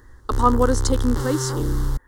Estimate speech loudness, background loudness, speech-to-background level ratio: −22.5 LKFS, −26.0 LKFS, 3.5 dB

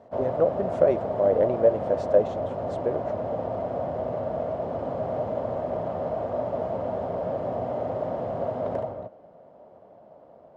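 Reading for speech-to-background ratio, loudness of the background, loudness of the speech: 5.5 dB, −30.0 LKFS, −24.5 LKFS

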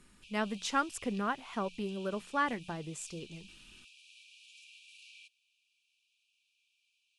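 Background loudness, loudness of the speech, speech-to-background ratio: −53.0 LKFS, −35.5 LKFS, 17.5 dB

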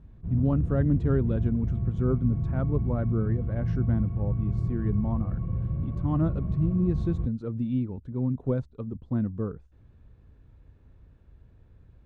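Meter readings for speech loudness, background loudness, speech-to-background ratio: −29.5 LKFS, −30.5 LKFS, 1.0 dB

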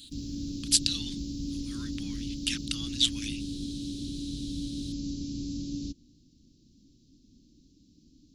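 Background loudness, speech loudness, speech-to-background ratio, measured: −36.5 LKFS, −29.0 LKFS, 7.5 dB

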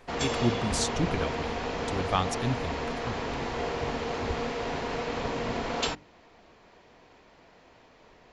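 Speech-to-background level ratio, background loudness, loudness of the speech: −0.5 dB, −32.0 LKFS, −32.5 LKFS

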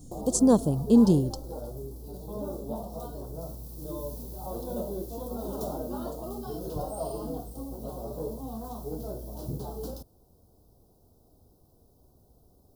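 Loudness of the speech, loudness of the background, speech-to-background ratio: −22.5 LKFS, −37.0 LKFS, 14.5 dB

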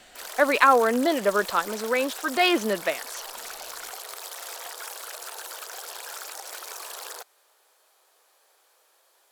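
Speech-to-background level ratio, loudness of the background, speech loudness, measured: 14.0 dB, −36.5 LKFS, −22.5 LKFS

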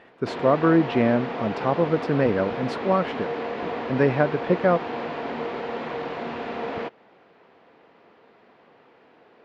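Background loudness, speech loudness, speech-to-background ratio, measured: −31.0 LKFS, −23.0 LKFS, 8.0 dB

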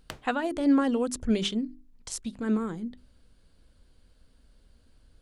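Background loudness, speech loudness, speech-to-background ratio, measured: −46.0 LKFS, −28.5 LKFS, 17.5 dB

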